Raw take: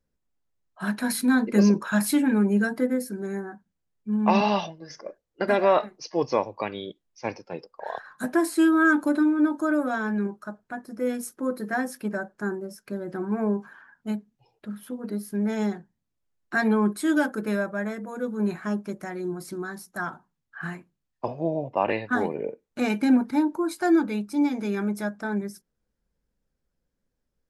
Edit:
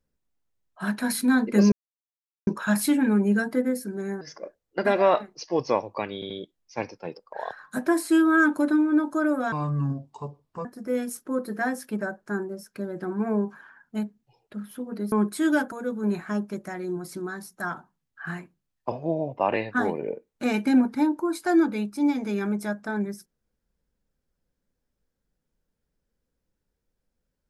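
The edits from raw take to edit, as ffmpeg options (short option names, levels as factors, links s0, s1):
-filter_complex "[0:a]asplit=9[s0][s1][s2][s3][s4][s5][s6][s7][s8];[s0]atrim=end=1.72,asetpts=PTS-STARTPTS,afade=t=out:st=1.716:d=0.004:c=hsin,apad=pad_dur=0.75[s9];[s1]atrim=start=1.72:end=3.462,asetpts=PTS-STARTPTS,afade=t=in:d=0.004:c=hsin[s10];[s2]atrim=start=4.838:end=6.852[s11];[s3]atrim=start=6.768:end=6.852[s12];[s4]atrim=start=6.768:end=9.994[s13];[s5]atrim=start=9.99:end=10.77,asetpts=PTS-STARTPTS,asetrate=30429,aresample=44100,atrim=end_sample=49852,asetpts=PTS-STARTPTS[s14];[s6]atrim=start=10.766:end=15.242[s15];[s7]atrim=start=16.758:end=17.362[s16];[s8]atrim=start=18.078[s17];[s9][s10]concat=n=2:v=0:a=1[s18];[s18][s11]acrossfade=d=0.004:c1=hsin:c2=hsin[s19];[s19][s12]acrossfade=d=0.004:c1=hsin:c2=hsin[s20];[s20][s13]acrossfade=d=0.004:c1=hsin:c2=hsin[s21];[s21][s14]acrossfade=d=0.004:c1=hsin:c2=hsin[s22];[s22][s15]acrossfade=d=0.004:c1=hsin:c2=hsin[s23];[s23][s16]acrossfade=d=0.004:c1=hsin:c2=hsin[s24];[s24][s17]acrossfade=d=0.004:c1=hsin:c2=hsin"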